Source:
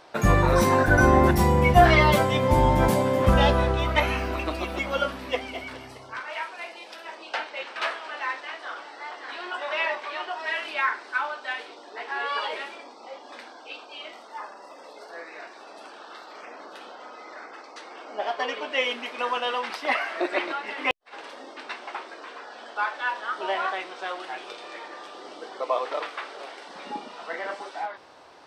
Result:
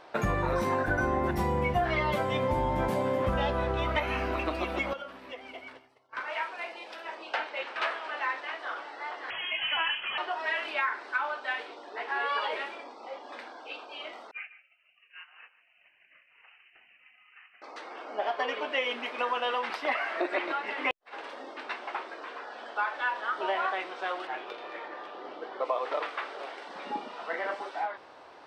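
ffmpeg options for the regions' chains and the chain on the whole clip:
-filter_complex "[0:a]asettb=1/sr,asplit=3[s0][s1][s2];[s0]atrim=end=4.934[s3];[s1]atrim=start=4.93:end=6.17,asetpts=PTS-STARTPTS,afade=t=in:d=0.004:c=qsin,afade=t=out:st=1.236:d=0.004:c=qsin,highpass=f=200:p=1,agate=range=0.0224:threshold=0.0224:ratio=3:release=100:detection=peak,acompressor=threshold=0.0112:ratio=4:attack=3.2:release=140:knee=1:detection=peak[s4];[s2]atrim=start=6.166[s5];[s3][s4]acrossfade=d=0.004:c1=hsin:c2=qsin[s6];[s6][s5]acrossfade=d=0.004:c1=qsin:c2=hsin,asettb=1/sr,asplit=3[s7][s8][s9];[s7]atrim=end=9.304[s10];[s8]atrim=start=9.3:end=10.18,asetpts=PTS-STARTPTS,afade=t=in:d=0.004:c=qsin,afade=t=out:st=0.876:d=0.004:c=qsin,equalizer=f=320:w=0.66:g=6.5,lowpass=f=3100:t=q:w=0.5098,lowpass=f=3100:t=q:w=0.6013,lowpass=f=3100:t=q:w=0.9,lowpass=f=3100:t=q:w=2.563,afreqshift=-3600[s11];[s9]atrim=start=10.176[s12];[s10][s11]acrossfade=d=0.004:c1=hsin:c2=qsin[s13];[s13][s12]acrossfade=d=0.004:c1=qsin:c2=hsin,asettb=1/sr,asplit=3[s14][s15][s16];[s14]atrim=end=14.314[s17];[s15]atrim=start=14.31:end=17.62,asetpts=PTS-STARTPTS,afade=t=in:d=0.004:c=qsin,afade=t=out:st=3.306:d=0.004:c=qsin,agate=range=0.0224:threshold=0.0224:ratio=3:release=100:detection=peak,lowpass=f=2800:t=q:w=0.5098,lowpass=f=2800:t=q:w=0.6013,lowpass=f=2800:t=q:w=0.9,lowpass=f=2800:t=q:w=2.563,afreqshift=-3300,aecho=1:1:147:0.188,atrim=end_sample=145971[s18];[s16]atrim=start=17.616[s19];[s17][s18]acrossfade=d=0.004:c1=hsin:c2=qsin[s20];[s20][s19]acrossfade=d=0.004:c1=qsin:c2=hsin,asettb=1/sr,asplit=3[s21][s22][s23];[s21]atrim=end=24.274[s24];[s22]atrim=start=24.27:end=25.65,asetpts=PTS-STARTPTS,afade=t=in:d=0.004:c=qsin,afade=t=out:st=1.376:d=0.004:c=qsin,adynamicsmooth=sensitivity=4.5:basefreq=3800,asplit=2[s25][s26];[s26]adelay=19,volume=0.251[s27];[s25][s27]amix=inputs=2:normalize=0,atrim=end_sample=60858[s28];[s23]atrim=start=25.646[s29];[s24][s28]acrossfade=d=0.004:c1=hsin:c2=qsin[s30];[s30][s29]acrossfade=d=0.004:c1=qsin:c2=hsin,bass=f=250:g=-4,treble=f=4000:g=-9,acompressor=threshold=0.0562:ratio=6"

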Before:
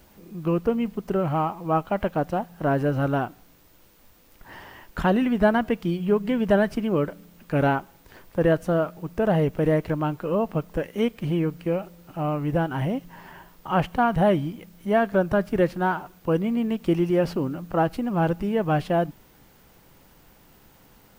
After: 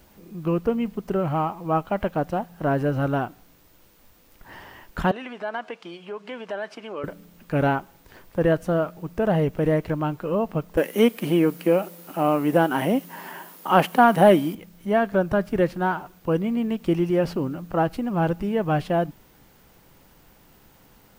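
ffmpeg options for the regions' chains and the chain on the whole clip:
-filter_complex "[0:a]asettb=1/sr,asplit=3[s0][s1][s2];[s0]atrim=end=5.114[s3];[s1]atrim=start=5.11:end=7.04,asetpts=PTS-STARTPTS,afade=t=in:d=0.004:c=qsin,afade=t=out:st=1.926:d=0.004:c=qsin,acompressor=threshold=0.1:ratio=10:attack=3.2:release=140:knee=1:detection=peak,highpass=580,lowpass=6000,bandreject=f=1900:w=21[s4];[s2]atrim=start=7.036[s5];[s3][s4]acrossfade=d=0.004:c1=hsin:c2=qsin[s6];[s6][s5]acrossfade=d=0.004:c1=qsin:c2=hsin,asettb=1/sr,asplit=3[s7][s8][s9];[s7]atrim=end=10.774[s10];[s8]atrim=start=10.77:end=14.55,asetpts=PTS-STARTPTS,afade=t=in:d=0.004:c=qsin,afade=t=out:st=3.776:d=0.004:c=qsin,highpass=f=200:w=0.5412,highpass=f=200:w=1.3066,equalizer=f=12000:t=o:w=0.7:g=12.5,acontrast=72[s11];[s9]atrim=start=14.546[s12];[s10][s11]acrossfade=d=0.004:c1=hsin:c2=qsin[s13];[s13][s12]acrossfade=d=0.004:c1=qsin:c2=hsin"

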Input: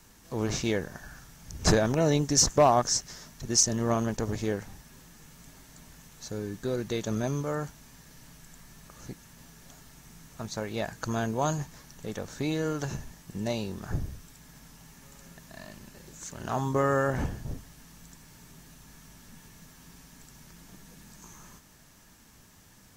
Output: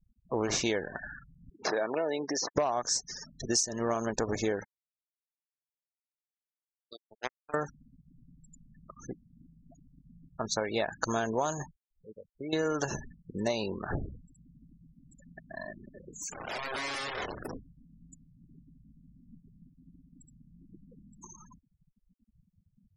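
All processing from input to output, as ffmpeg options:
-filter_complex "[0:a]asettb=1/sr,asplit=3[s0][s1][s2];[s0]atrim=end=1.504[s3];[s1]atrim=start=1.5:end=2.56,asetpts=PTS-STARTPTS,afade=t=in:d=0.004:c=qsin,afade=t=out:st=1.056:d=0.004:c=qsin,acompressor=threshold=0.0562:ratio=16:attack=3.2:release=140:knee=1:detection=peak,highpass=330,lowpass=3500[s4];[s2]atrim=start=2.556[s5];[s3][s4]acrossfade=d=0.004:c1=hsin:c2=qsin[s6];[s6][s5]acrossfade=d=0.004:c1=qsin:c2=hsin,asettb=1/sr,asplit=3[s7][s8][s9];[s7]atrim=end=4.644[s10];[s8]atrim=start=4.64:end=7.54,asetpts=PTS-STARTPTS,afade=t=in:d=0.004:c=qsin,afade=t=out:st=2.896:d=0.004:c=qsin,lowshelf=f=440:g=-9,acrusher=bits=3:mix=0:aa=0.5[s11];[s9]atrim=start=7.536[s12];[s10][s11]acrossfade=d=0.004:c1=hsin:c2=qsin[s13];[s13][s12]acrossfade=d=0.004:c1=qsin:c2=hsin,asettb=1/sr,asplit=3[s14][s15][s16];[s14]atrim=end=11.714[s17];[s15]atrim=start=11.71:end=12.53,asetpts=PTS-STARTPTS,afade=t=in:d=0.004:c=qsin,afade=t=out:st=0.816:d=0.004:c=qsin,equalizer=f=13000:t=o:w=2.7:g=-13,acompressor=threshold=0.00501:ratio=2:attack=3.2:release=140:knee=1:detection=peak,agate=range=0.316:threshold=0.00708:ratio=16:release=100:detection=peak[s18];[s16]atrim=start=12.526[s19];[s17][s18]acrossfade=d=0.004:c1=hsin:c2=qsin[s20];[s20][s19]acrossfade=d=0.004:c1=qsin:c2=hsin,asettb=1/sr,asplit=3[s21][s22][s23];[s21]atrim=end=15.914[s24];[s22]atrim=start=15.91:end=17.54,asetpts=PTS-STARTPTS,afade=t=in:d=0.004:c=qsin,afade=t=out:st=1.626:d=0.004:c=qsin,acompressor=threshold=0.0126:ratio=2.5:attack=3.2:release=140:knee=1:detection=peak,aeval=exprs='(mod(59.6*val(0)+1,2)-1)/59.6':c=same,asplit=2[s25][s26];[s26]adelay=28,volume=0.266[s27];[s25][s27]amix=inputs=2:normalize=0,atrim=end_sample=71883[s28];[s23]atrim=start=17.536[s29];[s24][s28]acrossfade=d=0.004:c1=hsin:c2=qsin[s30];[s30][s29]acrossfade=d=0.004:c1=qsin:c2=hsin,afftfilt=real='re*gte(hypot(re,im),0.00891)':imag='im*gte(hypot(re,im),0.00891)':win_size=1024:overlap=0.75,bass=f=250:g=-12,treble=f=4000:g=0,acompressor=threshold=0.0224:ratio=12,volume=2.37"

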